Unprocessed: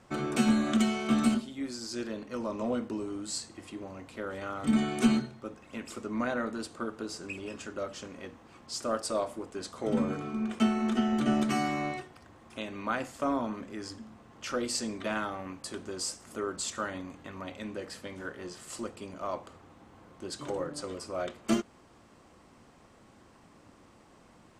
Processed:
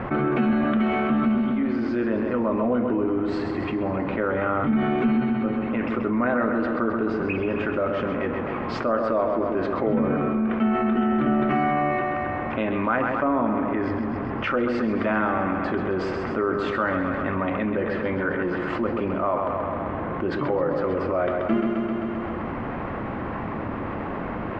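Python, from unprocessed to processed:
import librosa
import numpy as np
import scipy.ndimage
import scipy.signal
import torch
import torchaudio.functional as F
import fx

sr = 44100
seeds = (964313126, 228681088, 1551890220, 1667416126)

p1 = scipy.signal.sosfilt(scipy.signal.butter(4, 2200.0, 'lowpass', fs=sr, output='sos'), x)
p2 = p1 + fx.echo_feedback(p1, sr, ms=131, feedback_pct=59, wet_db=-9.0, dry=0)
y = fx.env_flatten(p2, sr, amount_pct=70)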